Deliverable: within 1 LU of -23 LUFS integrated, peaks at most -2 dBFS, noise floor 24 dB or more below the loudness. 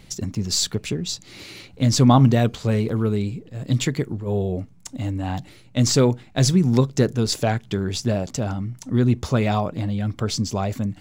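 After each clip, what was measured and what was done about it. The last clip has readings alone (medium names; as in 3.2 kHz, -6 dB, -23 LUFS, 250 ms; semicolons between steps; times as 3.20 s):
dropouts 3; longest dropout 3.9 ms; loudness -22.0 LUFS; peak level -2.5 dBFS; loudness target -23.0 LUFS
-> interpolate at 0.35/2.89/7.27 s, 3.9 ms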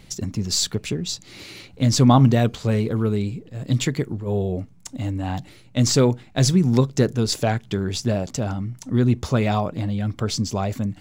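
dropouts 0; loudness -22.0 LUFS; peak level -2.5 dBFS; loudness target -23.0 LUFS
-> trim -1 dB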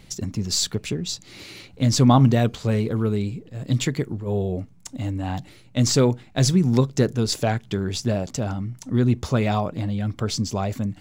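loudness -23.0 LUFS; peak level -3.5 dBFS; noise floor -49 dBFS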